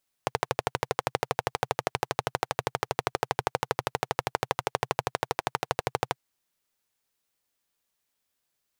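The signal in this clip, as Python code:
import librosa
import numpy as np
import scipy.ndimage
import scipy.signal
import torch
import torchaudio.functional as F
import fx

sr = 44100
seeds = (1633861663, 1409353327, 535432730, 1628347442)

y = fx.engine_single(sr, seeds[0], length_s=5.89, rpm=1500, resonances_hz=(130.0, 480.0, 750.0))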